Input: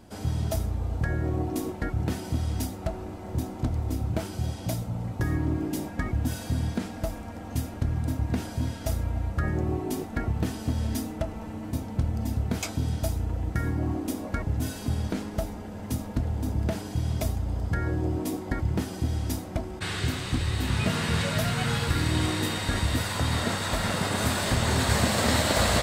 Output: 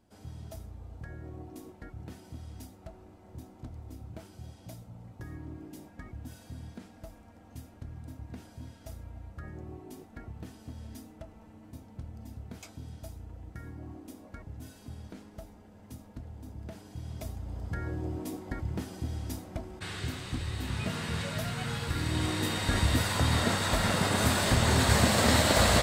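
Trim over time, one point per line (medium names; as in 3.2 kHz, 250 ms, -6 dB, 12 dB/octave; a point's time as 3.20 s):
16.58 s -16 dB
17.79 s -7.5 dB
21.80 s -7.5 dB
22.83 s 0 dB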